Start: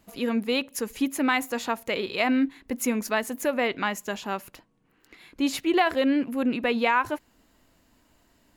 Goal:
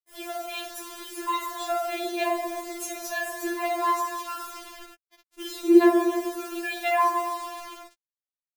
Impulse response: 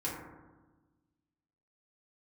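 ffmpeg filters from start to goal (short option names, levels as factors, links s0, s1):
-filter_complex "[0:a]asplit=3[s0][s1][s2];[s0]afade=t=out:st=0.39:d=0.02[s3];[s1]bass=f=250:g=-11,treble=f=4000:g=-5,afade=t=in:st=0.39:d=0.02,afade=t=out:st=1.47:d=0.02[s4];[s2]afade=t=in:st=1.47:d=0.02[s5];[s3][s4][s5]amix=inputs=3:normalize=0,asettb=1/sr,asplit=3[s6][s7][s8];[s6]atrim=end=3.804[s9];[s7]atrim=start=3.8:end=4.36,asetpts=PTS-STARTPTS,afade=t=in:d=0.004:c=qsin,afade=t=out:st=0.556:d=0.004:c=qsin,highpass=f=84:w=0.5412,highpass=f=84:w=1.3066[s10];[s8]atrim=start=4.356[s11];[s9][s10]acrossfade=d=0.004:c1=hsin:c2=qsin[s12];[s12][s11]acrossfade=d=0.004:c1=qsin:c2=hsin,asettb=1/sr,asplit=3[s13][s14][s15];[s13]atrim=end=5.414[s16];[s14]atrim=start=5.41:end=6.26,asetpts=PTS-STARTPTS,afade=t=in:d=0.004:c=qsin,afade=t=out:st=0.846:d=0.004:c=qsin,acrossover=split=180|3500[s17][s18][s19];[s17]acompressor=threshold=0.00891:ratio=4[s20];[s18]acompressor=threshold=0.0794:ratio=4[s21];[s19]acompressor=threshold=0.01:ratio=4[s22];[s20][s21][s22]amix=inputs=3:normalize=0[s23];[s15]atrim=start=6.256[s24];[s16][s23]acrossfade=d=0.004:c1=hsin:c2=qsin[s25];[s25][s24]acrossfade=d=0.004:c1=qsin:c2=hsin,asplit=2[s26][s27];[s27]adelay=314.9,volume=0.158,highshelf=f=4000:g=-7.08[s28];[s26][s28]amix=inputs=2:normalize=0[s29];[1:a]atrim=start_sample=2205,asetrate=34839,aresample=44100[s30];[s29][s30]afir=irnorm=-1:irlink=0,acrusher=bits=5:mix=0:aa=0.000001,afftfilt=real='re*4*eq(mod(b,16),0)':imag='im*4*eq(mod(b,16),0)':win_size=2048:overlap=0.75,volume=0.841"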